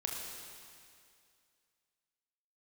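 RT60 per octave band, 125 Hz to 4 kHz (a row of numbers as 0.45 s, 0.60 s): 2.2 s, 2.3 s, 2.3 s, 2.3 s, 2.3 s, 2.3 s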